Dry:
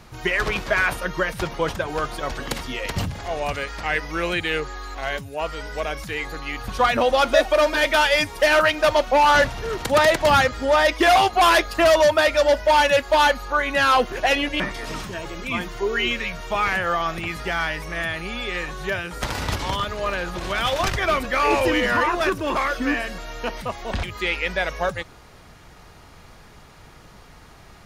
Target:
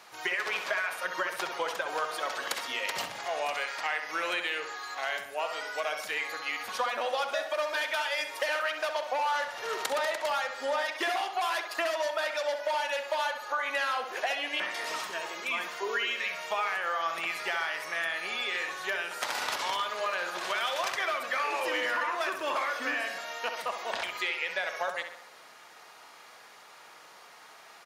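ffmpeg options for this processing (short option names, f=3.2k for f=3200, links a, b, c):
-filter_complex "[0:a]highpass=660,acompressor=threshold=-26dB:ratio=12,asplit=2[a][b];[b]adelay=66,lowpass=f=3.4k:p=1,volume=-7dB,asplit=2[c][d];[d]adelay=66,lowpass=f=3.4k:p=1,volume=0.54,asplit=2[e][f];[f]adelay=66,lowpass=f=3.4k:p=1,volume=0.54,asplit=2[g][h];[h]adelay=66,lowpass=f=3.4k:p=1,volume=0.54,asplit=2[i][j];[j]adelay=66,lowpass=f=3.4k:p=1,volume=0.54,asplit=2[k][l];[l]adelay=66,lowpass=f=3.4k:p=1,volume=0.54,asplit=2[m][n];[n]adelay=66,lowpass=f=3.4k:p=1,volume=0.54[o];[a][c][e][g][i][k][m][o]amix=inputs=8:normalize=0,volume=-1.5dB"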